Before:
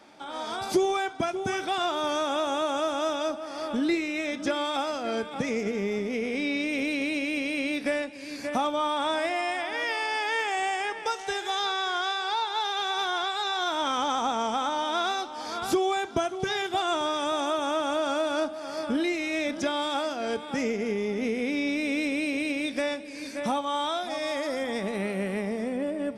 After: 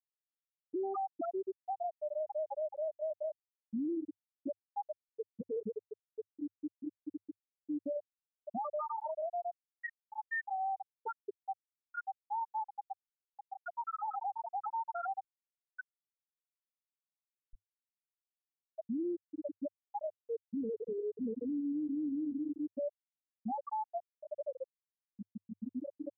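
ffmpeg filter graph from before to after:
ffmpeg -i in.wav -filter_complex "[0:a]asettb=1/sr,asplit=3[link_01][link_02][link_03];[link_01]atrim=end=5.844[link_04];[link_02]atrim=start=5.84:end=7.68,asetpts=PTS-STARTPTS,afade=type=in:duration=0.004:curve=qsin,afade=type=out:start_time=1.836:duration=0.004:curve=qsin,highpass=93,asoftclip=type=hard:threshold=-27dB[link_05];[link_03]atrim=start=7.676[link_06];[link_04][link_05]acrossfade=duration=0.004:curve1=hsin:curve2=qsin[link_07];[link_07][link_06]acrossfade=duration=0.004:curve1=qsin:curve2=hsin,asettb=1/sr,asplit=3[link_08][link_09][link_10];[link_08]atrim=end=15.494[link_11];[link_09]atrim=start=15.49:end=18.61,asetpts=PTS-STARTPTS,afade=type=in:duration=0.004:curve=qsin,afade=type=out:start_time=3.116:duration=0.004:curve=qsin,asplit=5[link_12][link_13][link_14][link_15][link_16];[link_13]adelay=291,afreqshift=58,volume=-10dB[link_17];[link_14]adelay=582,afreqshift=116,volume=-18.9dB[link_18];[link_15]adelay=873,afreqshift=174,volume=-27.7dB[link_19];[link_16]adelay=1164,afreqshift=232,volume=-36.6dB[link_20];[link_12][link_17][link_18][link_19][link_20]amix=inputs=5:normalize=0,atrim=end_sample=137592,aeval=exprs='(mod(13.3*val(0)+1,2)-1)/13.3':channel_layout=same[link_21];[link_10]atrim=start=18.606[link_22];[link_11][link_21]acrossfade=duration=0.004:curve1=hsin:curve2=qsin[link_23];[link_23][link_22]acrossfade=duration=0.004:curve1=qsin:curve2=hsin,afftfilt=real='re*gte(hypot(re,im),0.355)':imag='im*gte(hypot(re,im),0.355)':win_size=1024:overlap=0.75,equalizer=frequency=100:width=5.4:gain=6.5,alimiter=level_in=5.5dB:limit=-24dB:level=0:latency=1:release=58,volume=-5.5dB,volume=-1.5dB" out.wav

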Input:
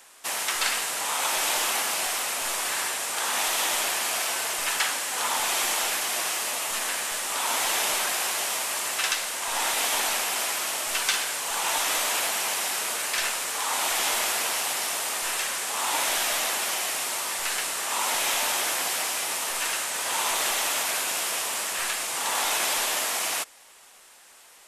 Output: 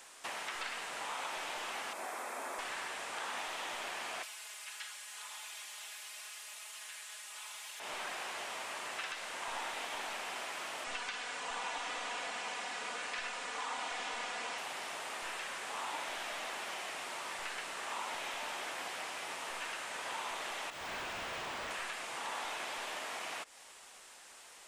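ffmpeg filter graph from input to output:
ffmpeg -i in.wav -filter_complex "[0:a]asettb=1/sr,asplit=3[link_01][link_02][link_03];[link_01]atrim=end=1.934[link_04];[link_02]atrim=start=1.93:end=2.59,asetpts=PTS-STARTPTS,afade=type=in:duration=0.004:curve=qsin,afade=type=out:start_time=0.656:duration=0.004:curve=qsin,highpass=frequency=210:width=0.5412,highpass=frequency=210:width=1.3066,equalizer=frequency=4000:width_type=o:width=2.1:gain=-11.5,bandreject=frequency=2900:width=8.4[link_05];[link_03]atrim=start=2.586[link_06];[link_04][link_05]acrossfade=duration=0.004:curve1=hsin:curve2=qsin[link_07];[link_07][link_06]acrossfade=duration=0.004:curve1=qsin:curve2=hsin,asettb=1/sr,asplit=3[link_08][link_09][link_10];[link_08]atrim=end=4.234[link_11];[link_09]atrim=start=4.23:end=7.8,asetpts=PTS-STARTPTS,afade=type=in:duration=0.004:curve=qsin,afade=type=out:start_time=3.566:duration=0.004:curve=qsin,aderivative,aecho=1:1:4.8:0.95,atrim=end_sample=157437,acontrast=44[link_12];[link_10]atrim=start=7.796[link_13];[link_11][link_12]acrossfade=duration=0.004:curve1=hsin:curve2=qsin[link_14];[link_14][link_13]acrossfade=duration=0.004:curve1=qsin:curve2=hsin,asettb=1/sr,asplit=3[link_15][link_16][link_17];[link_15]atrim=end=10.844[link_18];[link_16]atrim=start=10.84:end=14.58,asetpts=PTS-STARTPTS,afade=type=in:duration=0.004:curve=qsin,afade=type=out:start_time=3.736:duration=0.004:curve=qsin,lowpass=frequency=8900:width=0.5412,lowpass=frequency=8900:width=1.3066,aecho=1:1:4.1:0.49,atrim=end_sample=164934[link_19];[link_17]atrim=start=14.576[link_20];[link_18][link_19]acrossfade=duration=0.004:curve1=hsin:curve2=qsin[link_21];[link_21][link_20]acrossfade=duration=0.004:curve1=qsin:curve2=hsin,asettb=1/sr,asplit=3[link_22][link_23][link_24];[link_22]atrim=end=20.704[link_25];[link_23]atrim=start=20.7:end=21.71,asetpts=PTS-STARTPTS,afade=type=in:duration=0.004:curve=qsin,afade=type=out:start_time=1.006:duration=0.004:curve=qsin,highpass=frequency=220:width=0.5412,highpass=frequency=220:width=1.3066,adynamicsmooth=sensitivity=7.5:basefreq=1400,volume=35.5dB,asoftclip=hard,volume=-35.5dB[link_26];[link_24]atrim=start=21.706[link_27];[link_25][link_26]acrossfade=duration=0.004:curve1=hsin:curve2=qsin[link_28];[link_28][link_27]acrossfade=duration=0.004:curve1=qsin:curve2=hsin,acompressor=threshold=-33dB:ratio=6,equalizer=frequency=12000:width_type=o:width=0.27:gain=-12.5,acrossover=split=3400[link_29][link_30];[link_30]acompressor=threshold=-48dB:ratio=4:attack=1:release=60[link_31];[link_29][link_31]amix=inputs=2:normalize=0,volume=-2dB" out.wav

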